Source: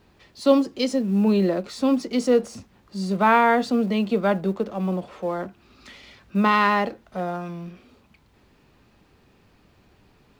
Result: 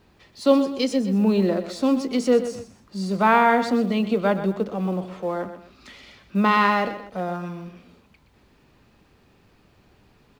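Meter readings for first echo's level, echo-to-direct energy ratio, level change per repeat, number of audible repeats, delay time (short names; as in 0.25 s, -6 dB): -11.5 dB, -11.0 dB, -8.5 dB, 2, 0.125 s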